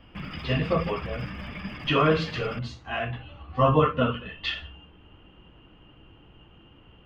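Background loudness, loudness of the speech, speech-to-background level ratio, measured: -38.0 LUFS, -26.5 LUFS, 11.5 dB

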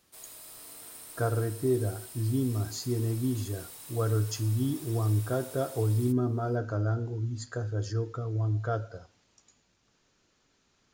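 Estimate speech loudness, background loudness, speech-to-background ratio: -30.5 LUFS, -44.0 LUFS, 13.5 dB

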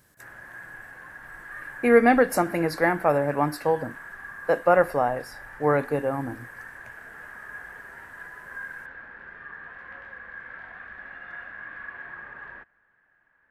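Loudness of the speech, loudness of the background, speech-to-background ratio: -23.0 LUFS, -40.5 LUFS, 17.5 dB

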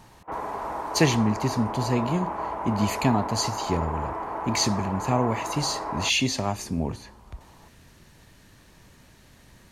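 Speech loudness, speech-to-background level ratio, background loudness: -26.5 LUFS, 5.5 dB, -32.0 LUFS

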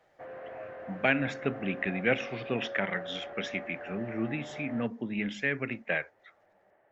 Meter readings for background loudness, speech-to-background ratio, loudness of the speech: -43.0 LUFS, 10.5 dB, -32.5 LUFS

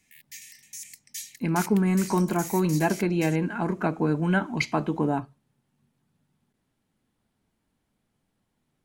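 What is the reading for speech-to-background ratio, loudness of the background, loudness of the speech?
13.5 dB, -39.0 LUFS, -25.5 LUFS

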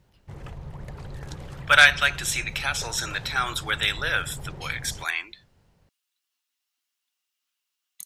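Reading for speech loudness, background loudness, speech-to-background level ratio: -22.5 LUFS, -40.0 LUFS, 17.5 dB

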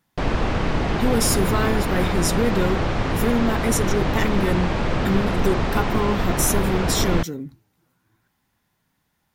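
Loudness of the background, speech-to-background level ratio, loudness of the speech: -24.0 LUFS, -0.5 dB, -24.5 LUFS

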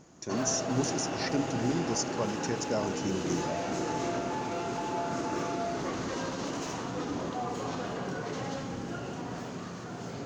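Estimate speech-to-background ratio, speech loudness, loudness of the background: 1.5 dB, -33.0 LUFS, -34.5 LUFS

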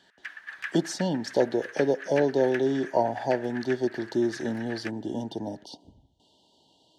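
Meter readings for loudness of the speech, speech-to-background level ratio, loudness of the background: -28.0 LUFS, 12.5 dB, -40.5 LUFS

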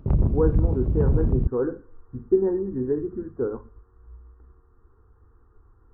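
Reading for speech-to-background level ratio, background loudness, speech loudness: -3.0 dB, -24.0 LUFS, -27.0 LUFS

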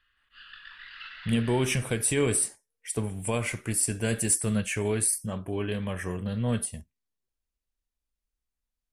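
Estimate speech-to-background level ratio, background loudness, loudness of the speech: 16.5 dB, -44.5 LUFS, -28.0 LUFS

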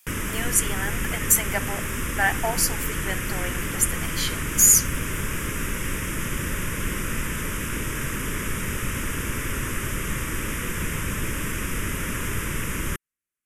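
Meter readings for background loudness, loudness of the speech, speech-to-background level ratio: -28.5 LUFS, -21.5 LUFS, 7.0 dB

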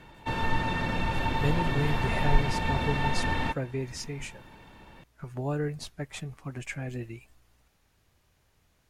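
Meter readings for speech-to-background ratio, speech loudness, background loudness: -4.5 dB, -34.0 LUFS, -29.5 LUFS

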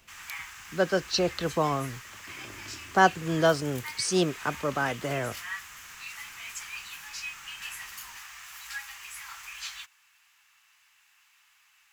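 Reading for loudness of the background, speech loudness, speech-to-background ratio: -40.0 LUFS, -27.5 LUFS, 12.5 dB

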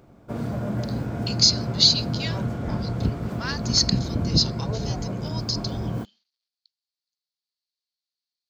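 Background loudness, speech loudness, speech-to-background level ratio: -28.5 LUFS, -22.0 LUFS, 6.5 dB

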